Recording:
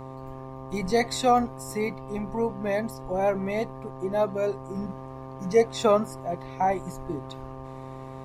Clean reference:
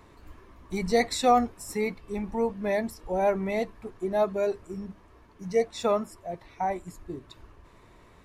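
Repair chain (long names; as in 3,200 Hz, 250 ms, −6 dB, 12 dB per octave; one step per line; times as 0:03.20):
hum removal 132 Hz, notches 9
level 0 dB, from 0:04.75 −4.5 dB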